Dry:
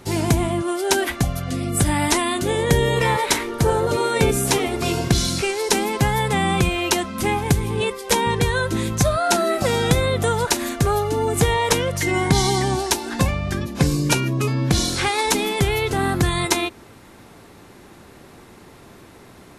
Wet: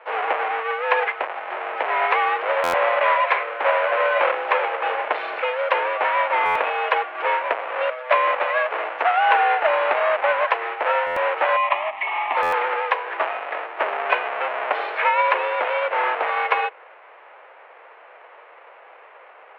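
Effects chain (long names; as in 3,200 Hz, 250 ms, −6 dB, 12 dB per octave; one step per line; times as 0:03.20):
each half-wave held at its own peak
0:11.56–0:12.37: phaser with its sweep stopped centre 1,400 Hz, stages 6
single-sideband voice off tune +110 Hz 480–2,500 Hz
buffer that repeats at 0:02.63/0:06.45/0:11.06/0:12.42, samples 512, times 8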